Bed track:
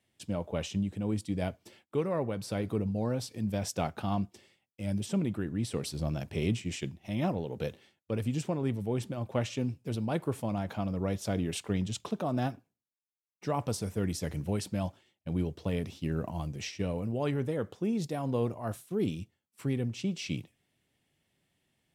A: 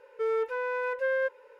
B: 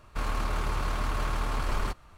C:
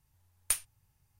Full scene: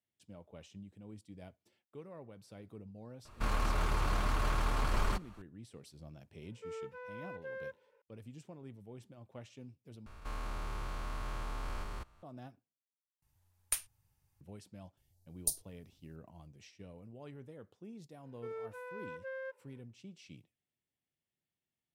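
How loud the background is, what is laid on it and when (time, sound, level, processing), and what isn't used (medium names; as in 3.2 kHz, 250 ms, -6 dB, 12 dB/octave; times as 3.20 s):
bed track -19 dB
3.25 s: add B -2.5 dB
6.43 s: add A -16 dB
10.06 s: replace with B -9.5 dB + spectrogram pixelated in time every 200 ms
13.22 s: replace with C -4.5 dB
14.97 s: add C -2.5 dB + elliptic band-stop 730–4300 Hz
18.23 s: add A -15 dB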